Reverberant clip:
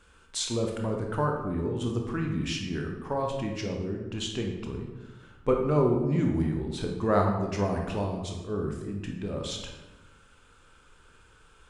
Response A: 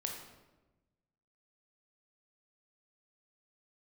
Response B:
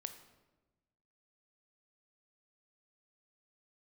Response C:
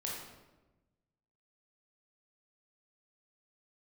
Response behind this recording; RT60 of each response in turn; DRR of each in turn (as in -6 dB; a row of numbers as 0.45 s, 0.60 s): A; 1.1 s, 1.1 s, 1.1 s; 1.0 dB, 8.0 dB, -4.0 dB